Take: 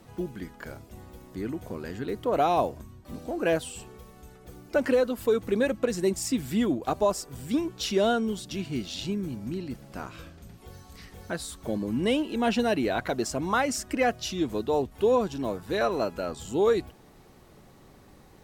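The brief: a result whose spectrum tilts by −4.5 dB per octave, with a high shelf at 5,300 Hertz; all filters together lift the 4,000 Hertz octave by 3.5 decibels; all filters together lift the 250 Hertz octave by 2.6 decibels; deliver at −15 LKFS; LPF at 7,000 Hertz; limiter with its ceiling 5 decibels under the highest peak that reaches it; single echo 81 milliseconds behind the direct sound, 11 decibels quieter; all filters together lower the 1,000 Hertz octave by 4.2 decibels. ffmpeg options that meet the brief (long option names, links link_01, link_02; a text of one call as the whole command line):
ffmpeg -i in.wav -af "lowpass=7000,equalizer=frequency=250:width_type=o:gain=3.5,equalizer=frequency=1000:width_type=o:gain=-7,equalizer=frequency=4000:width_type=o:gain=8.5,highshelf=frequency=5300:gain=-8,alimiter=limit=-17.5dB:level=0:latency=1,aecho=1:1:81:0.282,volume=13.5dB" out.wav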